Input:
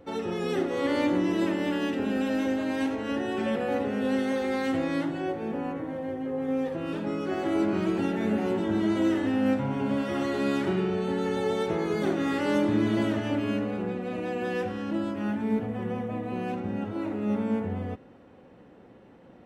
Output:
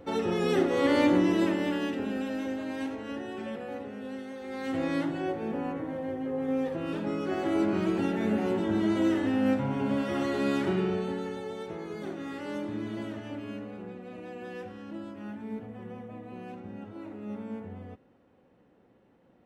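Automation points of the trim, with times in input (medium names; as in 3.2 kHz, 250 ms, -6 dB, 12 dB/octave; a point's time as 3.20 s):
1.15 s +2.5 dB
2.34 s -6 dB
2.92 s -6 dB
4.37 s -13.5 dB
4.85 s -1 dB
10.92 s -1 dB
11.46 s -10.5 dB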